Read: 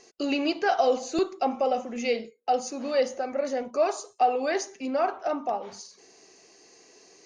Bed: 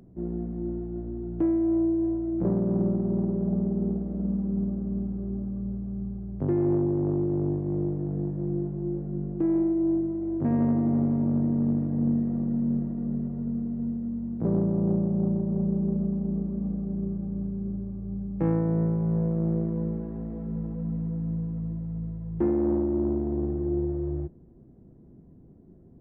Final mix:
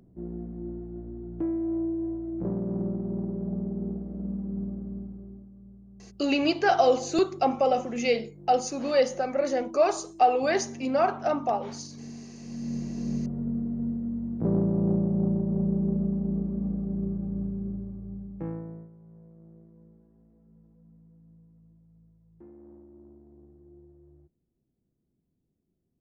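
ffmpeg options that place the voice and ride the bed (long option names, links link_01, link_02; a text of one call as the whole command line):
ffmpeg -i stem1.wav -i stem2.wav -filter_complex "[0:a]adelay=6000,volume=2dB[link_01];[1:a]volume=12.5dB,afade=type=out:start_time=4.76:duration=0.73:silence=0.237137,afade=type=in:start_time=12.4:duration=0.76:silence=0.133352,afade=type=out:start_time=17.43:duration=1.46:silence=0.0501187[link_02];[link_01][link_02]amix=inputs=2:normalize=0" out.wav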